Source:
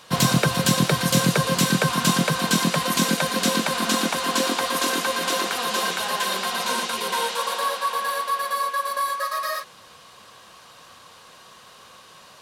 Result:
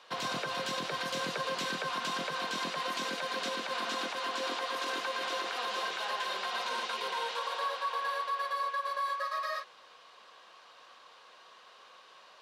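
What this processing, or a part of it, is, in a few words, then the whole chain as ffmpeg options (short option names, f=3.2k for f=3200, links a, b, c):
DJ mixer with the lows and highs turned down: -filter_complex "[0:a]acrossover=split=330 5300:gain=0.0891 1 0.126[a][b][c];[a][b][c]amix=inputs=3:normalize=0,alimiter=limit=-18dB:level=0:latency=1:release=62,volume=-7dB"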